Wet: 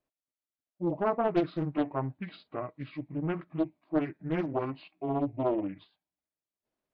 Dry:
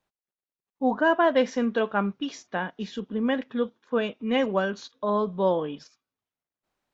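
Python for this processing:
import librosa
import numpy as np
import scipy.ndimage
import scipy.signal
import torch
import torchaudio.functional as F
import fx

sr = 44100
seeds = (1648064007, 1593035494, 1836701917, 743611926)

y = fx.pitch_heads(x, sr, semitones=-7.0)
y = fx.small_body(y, sr, hz=(300.0, 620.0), ring_ms=45, db=9)
y = fx.doppler_dist(y, sr, depth_ms=0.7)
y = y * 10.0 ** (-7.5 / 20.0)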